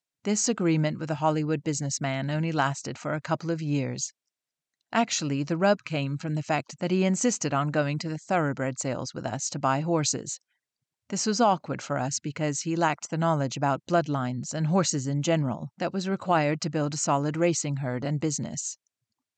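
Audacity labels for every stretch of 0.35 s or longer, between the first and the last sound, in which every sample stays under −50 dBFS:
4.100000	4.920000	silence
10.370000	11.100000	silence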